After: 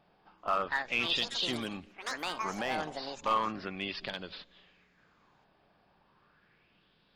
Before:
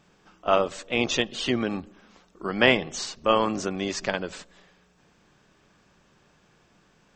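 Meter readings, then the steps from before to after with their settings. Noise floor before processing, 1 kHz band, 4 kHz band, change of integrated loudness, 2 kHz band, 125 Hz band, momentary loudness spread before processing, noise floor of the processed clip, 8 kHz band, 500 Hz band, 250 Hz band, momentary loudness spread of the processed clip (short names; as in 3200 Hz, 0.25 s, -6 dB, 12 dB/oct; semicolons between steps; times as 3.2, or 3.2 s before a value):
-63 dBFS, -4.5 dB, -4.5 dB, -7.5 dB, -7.0 dB, -11.5 dB, 14 LU, -69 dBFS, -12.0 dB, -13.0 dB, -12.0 dB, 12 LU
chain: downsampling 11025 Hz; echoes that change speed 0.38 s, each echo +6 st, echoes 3, each echo -6 dB; dynamic EQ 460 Hz, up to -4 dB, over -33 dBFS, Q 0.79; limiter -12.5 dBFS, peak gain reduction 9 dB; overloaded stage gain 18.5 dB; LFO bell 0.35 Hz 710–3800 Hz +11 dB; gain -9 dB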